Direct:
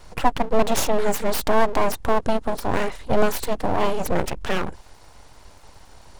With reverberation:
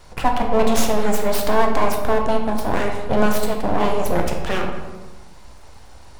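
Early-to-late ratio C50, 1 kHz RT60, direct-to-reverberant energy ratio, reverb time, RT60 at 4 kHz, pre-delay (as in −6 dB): 5.0 dB, 1.2 s, 2.0 dB, 1.3 s, 0.75 s, 11 ms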